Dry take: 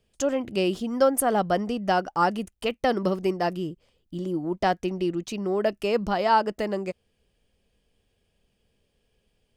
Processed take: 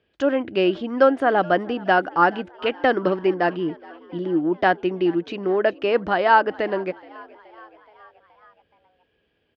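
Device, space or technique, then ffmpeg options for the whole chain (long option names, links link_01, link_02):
frequency-shifting delay pedal into a guitar cabinet: -filter_complex "[0:a]asplit=6[link_01][link_02][link_03][link_04][link_05][link_06];[link_02]adelay=424,afreqshift=71,volume=-23dB[link_07];[link_03]adelay=848,afreqshift=142,volume=-27.2dB[link_08];[link_04]adelay=1272,afreqshift=213,volume=-31.3dB[link_09];[link_05]adelay=1696,afreqshift=284,volume=-35.5dB[link_10];[link_06]adelay=2120,afreqshift=355,volume=-39.6dB[link_11];[link_01][link_07][link_08][link_09][link_10][link_11]amix=inputs=6:normalize=0,highpass=99,equalizer=frequency=130:width_type=q:width=4:gain=-8,equalizer=frequency=210:width_type=q:width=4:gain=-7,equalizer=frequency=310:width_type=q:width=4:gain=6,equalizer=frequency=1600:width_type=q:width=4:gain=8,lowpass=frequency=3600:width=0.5412,lowpass=frequency=3600:width=1.3066,volume=4dB"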